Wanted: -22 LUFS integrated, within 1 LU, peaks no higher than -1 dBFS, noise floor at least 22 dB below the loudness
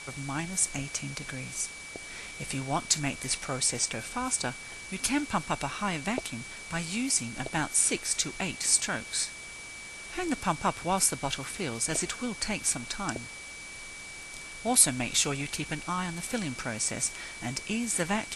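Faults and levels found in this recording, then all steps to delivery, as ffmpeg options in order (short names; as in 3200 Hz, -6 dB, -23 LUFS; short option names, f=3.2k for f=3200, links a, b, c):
steady tone 2300 Hz; tone level -43 dBFS; noise floor -43 dBFS; noise floor target -52 dBFS; loudness -29.5 LUFS; peak -6.0 dBFS; loudness target -22.0 LUFS
-> -af "bandreject=f=2.3k:w=30"
-af "afftdn=nr=9:nf=-43"
-af "volume=7.5dB,alimiter=limit=-1dB:level=0:latency=1"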